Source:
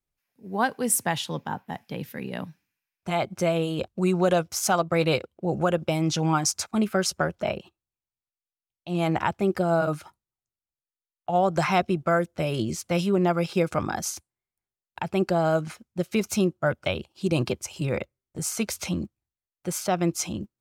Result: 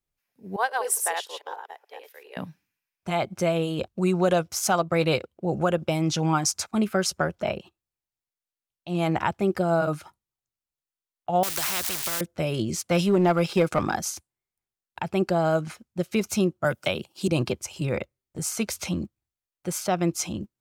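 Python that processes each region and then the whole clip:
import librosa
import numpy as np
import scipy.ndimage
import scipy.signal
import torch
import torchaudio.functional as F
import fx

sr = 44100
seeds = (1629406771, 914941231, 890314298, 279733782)

y = fx.chain(x, sr, fx.reverse_delay(ms=143, wet_db=-2.0),
    fx.ellip_highpass(hz=420.0, order=4, stop_db=60),
    fx.upward_expand(threshold_db=-39.0, expansion=1.5), at=(0.56, 2.37))
y = fx.chain(y, sr, fx.crossing_spikes(level_db=-26.5),
    fx.low_shelf(hz=330.0, db=-11.5),
    fx.spectral_comp(ratio=4.0), at=(11.43, 12.21))
y = fx.chain(y, sr, fx.highpass(hz=110.0, slope=6),
    fx.leveller(passes=1), at=(12.73, 13.97))
y = fx.chain(y, sr, fx.highpass(hz=110.0, slope=24),
    fx.high_shelf(hz=6100.0, db=11.0),
    fx.band_squash(depth_pct=40), at=(16.64, 17.28))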